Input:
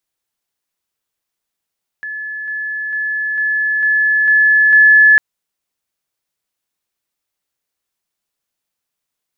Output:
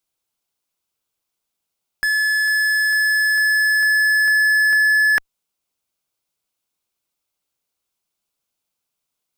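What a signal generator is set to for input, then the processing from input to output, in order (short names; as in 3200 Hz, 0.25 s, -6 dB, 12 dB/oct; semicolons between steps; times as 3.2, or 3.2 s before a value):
level ladder 1720 Hz -22.5 dBFS, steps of 3 dB, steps 7, 0.45 s 0.00 s
bell 1800 Hz -10 dB 0.26 oct; in parallel at -6 dB: fuzz box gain 49 dB, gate -53 dBFS; on the sum: compressor, threshold -14 dBFS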